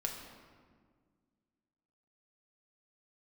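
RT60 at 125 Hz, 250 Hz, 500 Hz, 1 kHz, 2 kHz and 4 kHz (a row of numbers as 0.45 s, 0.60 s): 2.3 s, 2.4 s, 1.9 s, 1.6 s, 1.4 s, 1.0 s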